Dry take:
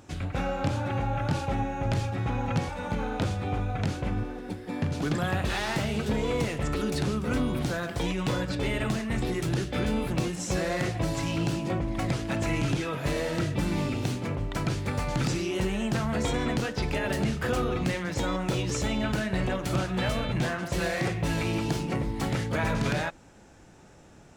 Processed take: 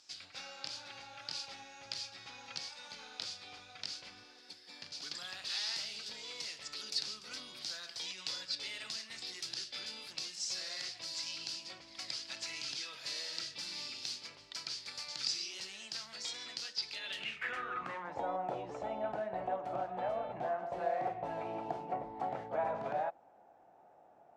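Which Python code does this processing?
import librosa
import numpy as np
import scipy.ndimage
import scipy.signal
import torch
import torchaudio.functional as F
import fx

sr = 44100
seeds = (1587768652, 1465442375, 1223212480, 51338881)

y = fx.filter_sweep_bandpass(x, sr, from_hz=4800.0, to_hz=730.0, start_s=16.87, end_s=18.22, q=5.1)
y = fx.rider(y, sr, range_db=3, speed_s=2.0)
y = y * 10.0 ** (6.0 / 20.0)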